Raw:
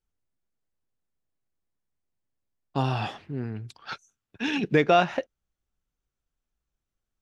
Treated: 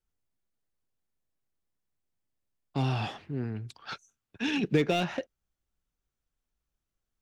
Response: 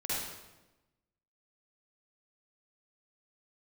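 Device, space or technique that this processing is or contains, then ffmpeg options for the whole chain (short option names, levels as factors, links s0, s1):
one-band saturation: -filter_complex "[0:a]acrossover=split=440|2500[s0][s1][s2];[s1]asoftclip=type=tanh:threshold=0.0211[s3];[s0][s3][s2]amix=inputs=3:normalize=0,volume=0.891"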